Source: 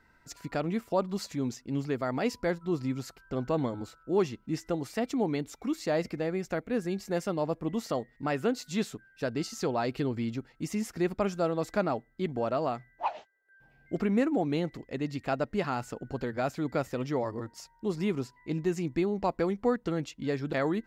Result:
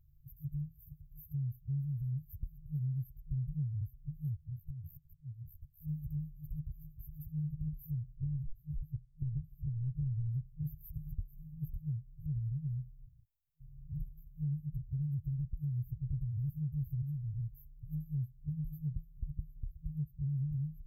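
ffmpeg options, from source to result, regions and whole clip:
ffmpeg -i in.wav -filter_complex "[0:a]asettb=1/sr,asplit=3[link_01][link_02][link_03];[link_01]atrim=end=4.374[link_04];[link_02]atrim=start=4.37:end=5.81,asetpts=PTS-STARTPTS,afade=type=in:duration=0.004:curve=qsin,afade=type=out:start_time=1.436:duration=0.004:curve=qsin,asplit=2[link_05][link_06];[link_06]adelay=18,volume=-4.5dB[link_07];[link_05][link_07]amix=inputs=2:normalize=0,atrim=end_sample=63504,acompressor=threshold=-40dB:ratio=5:attack=3.2:release=140:knee=1:detection=peak,aeval=exprs='val(0)*sin(2*PI*34*n/s)':channel_layout=same[link_08];[link_03]atrim=start=5.806[link_09];[link_04][link_08]acrossfade=duration=0.004:curve1=hsin:curve2=qsin[link_10];[link_10][link_09]acrossfade=duration=0.004:curve1=qsin:curve2=hsin,asettb=1/sr,asplit=3[link_11][link_12][link_13];[link_11]atrim=end=8.164[link_14];[link_12]atrim=start=8.16:end=10.28,asetpts=PTS-STARTPTS,afade=type=in:duration=0.004:curve=qsin,afade=type=out:start_time=2.116:duration=0.004:curve=qsin,tremolo=f=250:d=0.333,lowpass=frequency=1500:poles=1[link_15];[link_13]atrim=start=10.276[link_16];[link_14][link_15]acrossfade=duration=0.004:curve1=hsin:curve2=qsin[link_17];[link_17][link_16]acrossfade=duration=0.004:curve1=qsin:curve2=hsin,asettb=1/sr,asplit=3[link_18][link_19][link_20];[link_18]atrim=end=17.024[link_21];[link_19]atrim=start=17.02:end=17.56,asetpts=PTS-STARTPTS,afade=type=in:duration=0.004:curve=qsin,afade=type=out:start_time=0.536:duration=0.004:curve=qsin,asubboost=boost=8.5:cutoff=140,aecho=1:1:5.4:0.7,atrim=end_sample=23814,acrossover=split=120|290[link_22][link_23][link_24];[link_22]acompressor=threshold=-51dB:ratio=4[link_25];[link_23]acompressor=threshold=-49dB:ratio=4[link_26];[link_24]acompressor=threshold=-31dB:ratio=4[link_27];[link_25][link_26][link_27]amix=inputs=3:normalize=0[link_28];[link_20]atrim=start=17.556[link_29];[link_21][link_28]acrossfade=duration=0.004:curve1=hsin:curve2=qsin[link_30];[link_30][link_29]acrossfade=duration=0.004:curve1=qsin:curve2=hsin,afftfilt=real='re*(1-between(b*sr/4096,160,12000))':imag='im*(1-between(b*sr/4096,160,12000))':win_size=4096:overlap=0.75,asubboost=boost=4:cutoff=150,acompressor=threshold=-39dB:ratio=4,volume=5dB" out.wav

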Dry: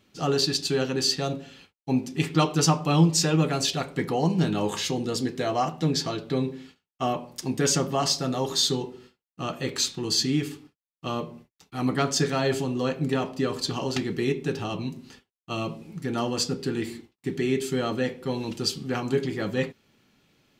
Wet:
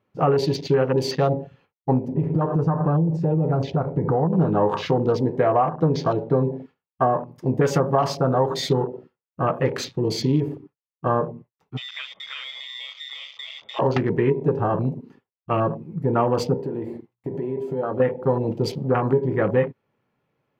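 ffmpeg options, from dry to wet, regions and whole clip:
ffmpeg -i in.wav -filter_complex "[0:a]asettb=1/sr,asplit=3[link_01][link_02][link_03];[link_01]atrim=end=2.084[link_04];[link_02]atrim=start=2.08:end=4.33,asetpts=PTS-STARTPTS,afade=type=in:duration=0.004:curve=qsin,afade=type=out:start_time=2.246:duration=0.004:curve=qsin,lowpass=frequency=3000:poles=1,acompressor=threshold=-30dB:ratio=6:attack=3.2:release=140:knee=1:detection=peak,lowshelf=frequency=250:gain=9[link_05];[link_03]atrim=start=4.326[link_06];[link_04][link_05]acrossfade=duration=0.004:curve1=hsin:curve2=qsin[link_07];[link_07][link_06]acrossfade=duration=0.004:curve1=qsin:curve2=hsin,asettb=1/sr,asplit=3[link_08][link_09][link_10];[link_08]atrim=end=11.774[link_11];[link_09]atrim=start=11.77:end=13.79,asetpts=PTS-STARTPTS,afade=type=in:duration=0.004:curve=qsin,afade=type=out:start_time=2.016:duration=0.004:curve=qsin,acompressor=threshold=-28dB:ratio=16:attack=3.2:release=140:knee=1:detection=peak,lowpass=frequency=3200:width_type=q:width=0.5098,lowpass=frequency=3200:width_type=q:width=0.6013,lowpass=frequency=3200:width_type=q:width=0.9,lowpass=frequency=3200:width_type=q:width=2.563,afreqshift=-3800[link_12];[link_10]atrim=start=13.786[link_13];[link_11][link_12]acrossfade=duration=0.004:curve1=hsin:curve2=qsin[link_14];[link_14][link_13]acrossfade=duration=0.004:curve1=qsin:curve2=hsin,asettb=1/sr,asplit=3[link_15][link_16][link_17];[link_15]atrim=end=16.584[link_18];[link_16]atrim=start=16.58:end=18,asetpts=PTS-STARTPTS,afade=type=in:duration=0.004:curve=qsin,afade=type=out:start_time=1.416:duration=0.004:curve=qsin,lowshelf=frequency=170:gain=-5,bandreject=frequency=60:width_type=h:width=6,bandreject=frequency=120:width_type=h:width=6,bandreject=frequency=180:width_type=h:width=6,acompressor=threshold=-32dB:ratio=5:attack=3.2:release=140:knee=1:detection=peak[link_19];[link_17]atrim=start=17.996[link_20];[link_18][link_19]acrossfade=duration=0.004:curve1=hsin:curve2=qsin[link_21];[link_21][link_20]acrossfade=duration=0.004:curve1=qsin:curve2=hsin,afwtdn=0.0158,equalizer=frequency=125:width_type=o:width=1:gain=11,equalizer=frequency=500:width_type=o:width=1:gain=11,equalizer=frequency=1000:width_type=o:width=1:gain=11,equalizer=frequency=2000:width_type=o:width=1:gain=5,equalizer=frequency=4000:width_type=o:width=1:gain=-5,equalizer=frequency=8000:width_type=o:width=1:gain=-10,acompressor=threshold=-15dB:ratio=6" out.wav

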